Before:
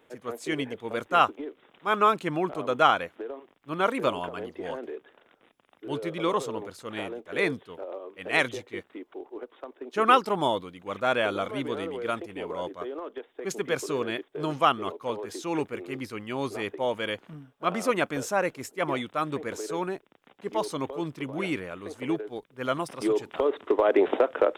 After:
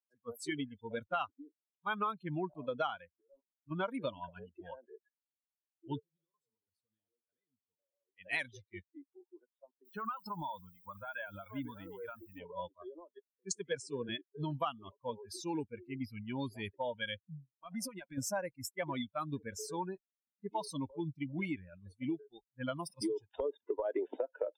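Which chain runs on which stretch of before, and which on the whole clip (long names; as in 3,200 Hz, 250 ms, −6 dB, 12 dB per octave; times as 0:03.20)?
0:03.20–0:03.71: leveller curve on the samples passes 2 + output level in coarse steps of 14 dB
0:05.99–0:08.09: parametric band 2,200 Hz −8.5 dB 0.36 octaves + downward compressor 16 to 1, threshold −36 dBFS + tuned comb filter 52 Hz, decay 1.4 s, harmonics odd, mix 70%
0:09.85–0:12.39: drawn EQ curve 590 Hz 0 dB, 1,200 Hz +6 dB, 3,600 Hz −2 dB + downward compressor, threshold −29 dBFS + bit-depth reduction 10 bits, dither triangular
0:13.19–0:14.09: linear-phase brick-wall low-pass 10,000 Hz + multiband upward and downward expander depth 100%
0:17.54–0:18.18: low-shelf EQ 73 Hz −10 dB + downward compressor 8 to 1, threshold −31 dBFS
whole clip: spectral dynamics exaggerated over time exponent 2; noise reduction from a noise print of the clip's start 18 dB; downward compressor 5 to 1, threshold −40 dBFS; level +5.5 dB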